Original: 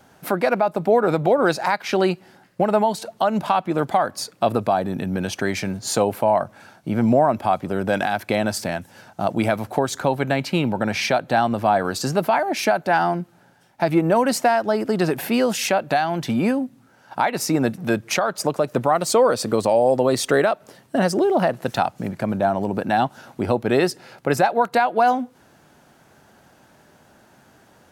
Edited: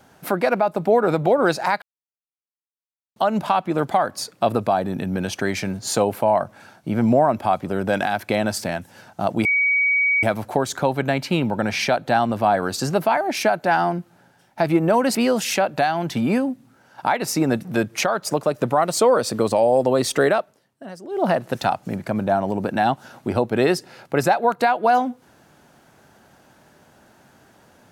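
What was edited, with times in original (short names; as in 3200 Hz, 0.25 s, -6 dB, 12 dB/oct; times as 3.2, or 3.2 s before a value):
1.82–3.16 mute
9.45 add tone 2260 Hz -15.5 dBFS 0.78 s
14.37–15.28 cut
20.52–21.39 dip -17.5 dB, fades 0.17 s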